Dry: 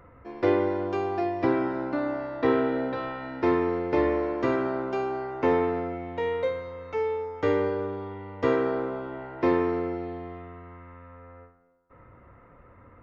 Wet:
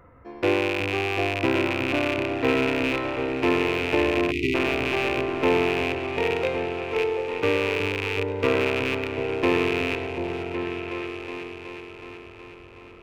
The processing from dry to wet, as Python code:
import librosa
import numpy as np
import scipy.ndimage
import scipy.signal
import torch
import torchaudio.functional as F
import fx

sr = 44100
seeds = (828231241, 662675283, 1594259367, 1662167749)

y = fx.rattle_buzz(x, sr, strikes_db=-37.0, level_db=-15.0)
y = fx.echo_opening(y, sr, ms=370, hz=200, octaves=2, feedback_pct=70, wet_db=-3)
y = fx.spec_erase(y, sr, start_s=4.31, length_s=0.23, low_hz=440.0, high_hz=1900.0)